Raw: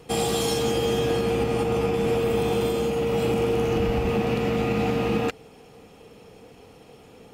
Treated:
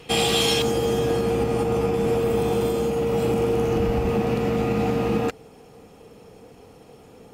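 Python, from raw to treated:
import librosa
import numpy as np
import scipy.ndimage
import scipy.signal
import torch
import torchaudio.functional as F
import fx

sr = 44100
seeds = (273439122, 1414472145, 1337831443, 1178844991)

y = fx.peak_eq(x, sr, hz=2900.0, db=fx.steps((0.0, 9.0), (0.62, -5.0)), octaves=1.4)
y = y * librosa.db_to_amplitude(1.5)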